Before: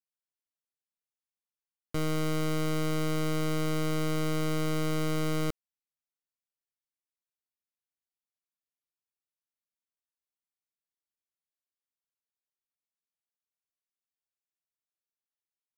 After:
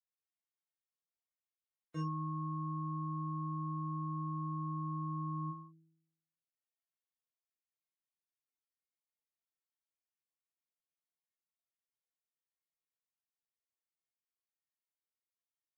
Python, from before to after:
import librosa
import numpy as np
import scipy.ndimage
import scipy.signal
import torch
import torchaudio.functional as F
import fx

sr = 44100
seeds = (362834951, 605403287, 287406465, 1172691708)

p1 = fx.stiff_resonator(x, sr, f0_hz=160.0, decay_s=0.83, stiffness=0.008)
p2 = np.clip(p1, -10.0 ** (-38.0 / 20.0), 10.0 ** (-38.0 / 20.0))
p3 = p1 + (p2 * 10.0 ** (-7.0 / 20.0))
p4 = fx.spec_gate(p3, sr, threshold_db=-30, keep='strong')
p5 = scipy.signal.sosfilt(scipy.signal.butter(2, 120.0, 'highpass', fs=sr, output='sos'), p4)
p6 = fx.high_shelf(p5, sr, hz=3700.0, db=-11.0)
p7 = p6 + fx.room_early_taps(p6, sr, ms=(20, 41), db=(-5.0, -4.5), dry=0)
y = p7 * 10.0 ** (5.0 / 20.0)